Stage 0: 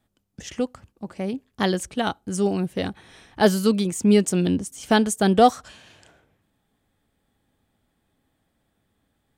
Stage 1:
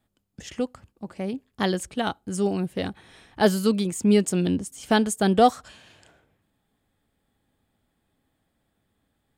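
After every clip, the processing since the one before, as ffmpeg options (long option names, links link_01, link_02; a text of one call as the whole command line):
ffmpeg -i in.wav -af "bandreject=frequency=5900:width=13,volume=-2dB" out.wav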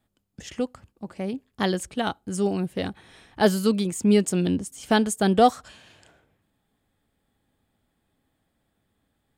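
ffmpeg -i in.wav -af anull out.wav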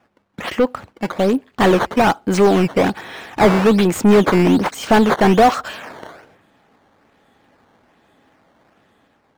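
ffmpeg -i in.wav -filter_complex "[0:a]acrusher=samples=10:mix=1:aa=0.000001:lfo=1:lforange=16:lforate=1.2,asplit=2[link_01][link_02];[link_02]highpass=frequency=720:poles=1,volume=27dB,asoftclip=type=tanh:threshold=-6.5dB[link_03];[link_01][link_03]amix=inputs=2:normalize=0,lowpass=frequency=1400:poles=1,volume=-6dB,dynaudnorm=framelen=120:gausssize=9:maxgain=4dB" out.wav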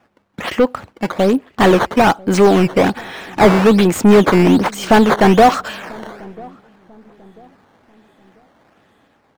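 ffmpeg -i in.wav -filter_complex "[0:a]asplit=2[link_01][link_02];[link_02]adelay=992,lowpass=frequency=840:poles=1,volume=-23dB,asplit=2[link_03][link_04];[link_04]adelay=992,lowpass=frequency=840:poles=1,volume=0.39,asplit=2[link_05][link_06];[link_06]adelay=992,lowpass=frequency=840:poles=1,volume=0.39[link_07];[link_01][link_03][link_05][link_07]amix=inputs=4:normalize=0,volume=2.5dB" out.wav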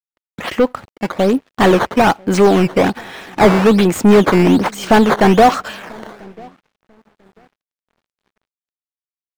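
ffmpeg -i in.wav -af "aeval=exprs='sgn(val(0))*max(abs(val(0))-0.00708,0)':channel_layout=same" out.wav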